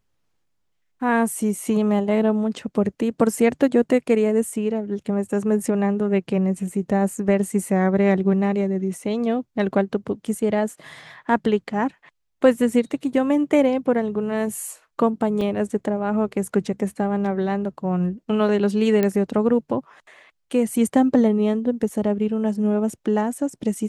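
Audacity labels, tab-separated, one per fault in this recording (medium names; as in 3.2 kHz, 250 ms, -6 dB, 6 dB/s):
15.410000	15.410000	dropout 2.9 ms
19.030000	19.030000	pop -9 dBFS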